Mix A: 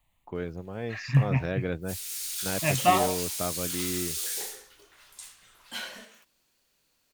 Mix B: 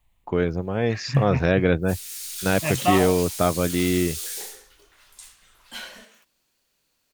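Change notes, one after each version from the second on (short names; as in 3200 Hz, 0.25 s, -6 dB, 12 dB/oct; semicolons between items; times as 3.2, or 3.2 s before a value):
first voice +11.5 dB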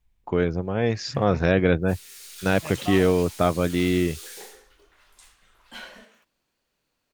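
second voice -11.5 dB; background: add high shelf 3500 Hz -11 dB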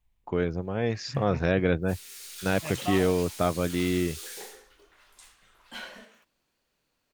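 first voice -4.5 dB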